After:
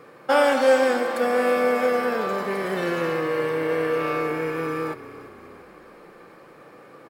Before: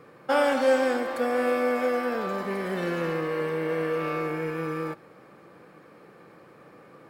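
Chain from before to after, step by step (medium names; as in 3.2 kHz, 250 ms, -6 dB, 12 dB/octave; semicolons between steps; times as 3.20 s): tone controls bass -6 dB, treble +1 dB; frequency-shifting echo 342 ms, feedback 53%, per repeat -32 Hz, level -16 dB; trim +4.5 dB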